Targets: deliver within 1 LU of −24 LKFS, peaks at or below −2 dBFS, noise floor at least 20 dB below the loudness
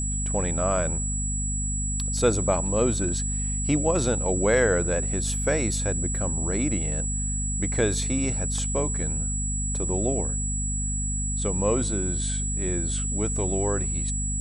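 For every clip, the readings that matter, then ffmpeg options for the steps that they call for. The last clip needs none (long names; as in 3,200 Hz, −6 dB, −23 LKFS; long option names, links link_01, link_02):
mains hum 50 Hz; hum harmonics up to 250 Hz; level of the hum −26 dBFS; interfering tone 7,800 Hz; level of the tone −29 dBFS; integrated loudness −25.0 LKFS; sample peak −8.0 dBFS; target loudness −24.0 LKFS
→ -af "bandreject=frequency=50:width_type=h:width=6,bandreject=frequency=100:width_type=h:width=6,bandreject=frequency=150:width_type=h:width=6,bandreject=frequency=200:width_type=h:width=6,bandreject=frequency=250:width_type=h:width=6"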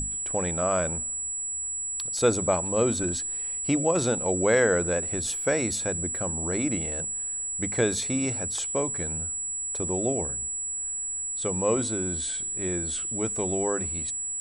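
mains hum none found; interfering tone 7,800 Hz; level of the tone −29 dBFS
→ -af "bandreject=frequency=7800:width=30"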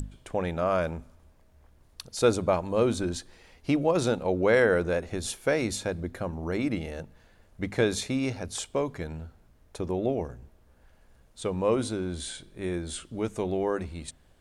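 interfering tone none found; integrated loudness −29.0 LKFS; sample peak −9.5 dBFS; target loudness −24.0 LKFS
→ -af "volume=5dB"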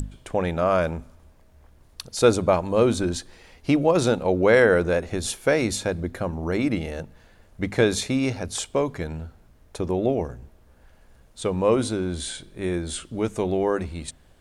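integrated loudness −24.0 LKFS; sample peak −4.5 dBFS; background noise floor −55 dBFS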